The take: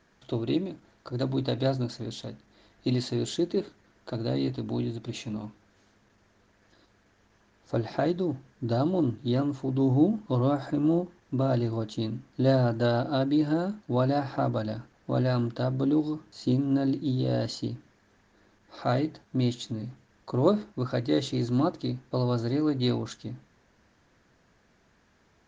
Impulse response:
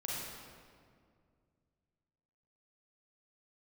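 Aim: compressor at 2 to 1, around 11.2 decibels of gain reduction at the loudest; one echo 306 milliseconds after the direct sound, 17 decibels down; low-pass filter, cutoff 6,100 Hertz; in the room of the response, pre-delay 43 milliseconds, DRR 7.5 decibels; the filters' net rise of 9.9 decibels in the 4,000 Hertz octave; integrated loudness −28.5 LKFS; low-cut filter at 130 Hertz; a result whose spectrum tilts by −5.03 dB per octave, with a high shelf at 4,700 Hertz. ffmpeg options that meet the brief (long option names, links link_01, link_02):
-filter_complex "[0:a]highpass=130,lowpass=6100,equalizer=frequency=4000:width_type=o:gain=8,highshelf=frequency=4700:gain=7.5,acompressor=threshold=-38dB:ratio=2,aecho=1:1:306:0.141,asplit=2[link_01][link_02];[1:a]atrim=start_sample=2205,adelay=43[link_03];[link_02][link_03]afir=irnorm=-1:irlink=0,volume=-10dB[link_04];[link_01][link_04]amix=inputs=2:normalize=0,volume=7.5dB"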